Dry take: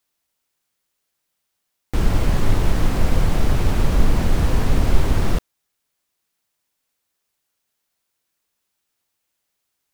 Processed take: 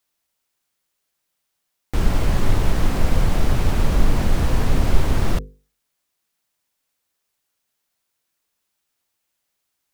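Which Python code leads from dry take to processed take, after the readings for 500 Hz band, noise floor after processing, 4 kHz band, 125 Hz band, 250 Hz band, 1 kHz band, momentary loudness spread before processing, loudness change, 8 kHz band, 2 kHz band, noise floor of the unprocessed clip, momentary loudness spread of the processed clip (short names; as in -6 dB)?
-0.5 dB, -77 dBFS, 0.0 dB, -1.0 dB, -1.0 dB, 0.0 dB, 3 LU, -0.5 dB, 0.0 dB, 0.0 dB, -77 dBFS, 3 LU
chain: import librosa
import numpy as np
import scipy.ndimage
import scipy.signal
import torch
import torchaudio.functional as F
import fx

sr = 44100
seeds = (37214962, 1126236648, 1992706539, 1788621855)

y = fx.hum_notches(x, sr, base_hz=50, count=10)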